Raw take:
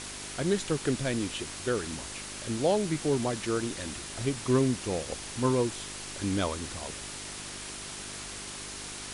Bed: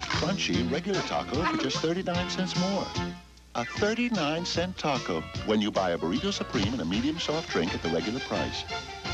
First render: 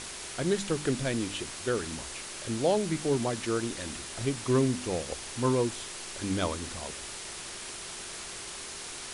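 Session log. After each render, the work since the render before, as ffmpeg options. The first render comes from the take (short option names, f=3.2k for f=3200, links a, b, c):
-af "bandreject=f=50:t=h:w=4,bandreject=f=100:t=h:w=4,bandreject=f=150:t=h:w=4,bandreject=f=200:t=h:w=4,bandreject=f=250:t=h:w=4,bandreject=f=300:t=h:w=4"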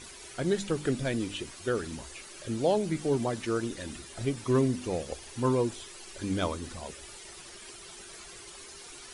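-af "afftdn=nr=11:nf=-41"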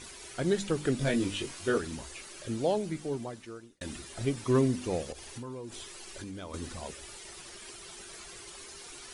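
-filter_complex "[0:a]asettb=1/sr,asplit=3[a][b][c];[a]atrim=end=0.994[d];[b]atrim=start=0.99:end=1.78,asetpts=PTS-STARTPTS,afade=t=in:d=0.004:c=qsin,afade=t=out:st=0.786:d=0.004:c=qsin,asplit=2[e][f];[f]adelay=21,volume=-2dB[g];[e][g]amix=inputs=2:normalize=0,atrim=end_sample=34839[h];[c]atrim=start=1.776[i];[d][h]acrossfade=d=0.004:c1=hsin:c2=qsin[j];[j][i]acrossfade=d=0.004:c1=qsin:c2=hsin,asettb=1/sr,asplit=3[k][l][m];[k]atrim=end=5.114[n];[l]atrim=start=5.11:end=6.54,asetpts=PTS-STARTPTS,afade=t=in:d=0.004:c=qsin,afade=t=out:st=1.426:d=0.004:c=qsin,acompressor=threshold=-37dB:ratio=16:attack=3.2:release=140:knee=1:detection=peak[o];[m]atrim=start=6.536[p];[n][o]acrossfade=d=0.004:c1=hsin:c2=qsin[q];[q][p]acrossfade=d=0.004:c1=qsin:c2=hsin,asplit=2[r][s];[r]atrim=end=3.81,asetpts=PTS-STARTPTS,afade=t=out:st=2.31:d=1.5[t];[s]atrim=start=3.81,asetpts=PTS-STARTPTS,afade=t=in:d=0.004:c=hsin[u];[t][u]concat=n=2:v=0:a=1"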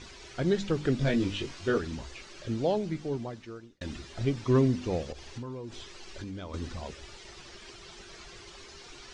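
-af "lowpass=f=6k:w=0.5412,lowpass=f=6k:w=1.3066,lowshelf=f=150:g=6.5"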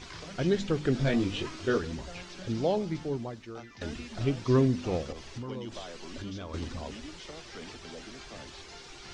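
-filter_complex "[1:a]volume=-17.5dB[a];[0:a][a]amix=inputs=2:normalize=0"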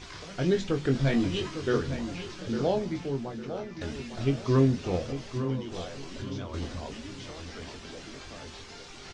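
-filter_complex "[0:a]asplit=2[a][b];[b]adelay=22,volume=-7dB[c];[a][c]amix=inputs=2:normalize=0,asplit=2[d][e];[e]adelay=853,lowpass=f=3.4k:p=1,volume=-9.5dB,asplit=2[f][g];[g]adelay=853,lowpass=f=3.4k:p=1,volume=0.34,asplit=2[h][i];[i]adelay=853,lowpass=f=3.4k:p=1,volume=0.34,asplit=2[j][k];[k]adelay=853,lowpass=f=3.4k:p=1,volume=0.34[l];[d][f][h][j][l]amix=inputs=5:normalize=0"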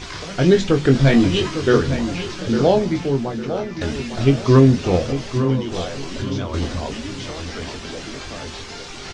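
-af "volume=11.5dB,alimiter=limit=-2dB:level=0:latency=1"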